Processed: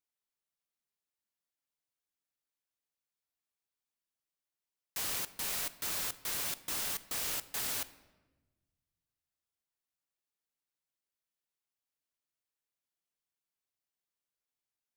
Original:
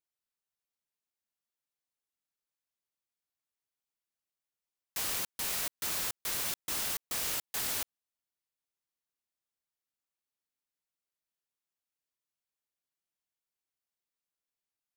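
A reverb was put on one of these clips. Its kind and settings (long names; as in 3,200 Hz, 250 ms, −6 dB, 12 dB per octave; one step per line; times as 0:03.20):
rectangular room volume 780 cubic metres, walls mixed, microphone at 0.31 metres
level −2 dB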